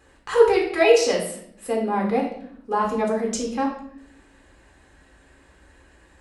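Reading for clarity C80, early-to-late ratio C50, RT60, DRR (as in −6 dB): 9.5 dB, 5.0 dB, 0.65 s, −1.5 dB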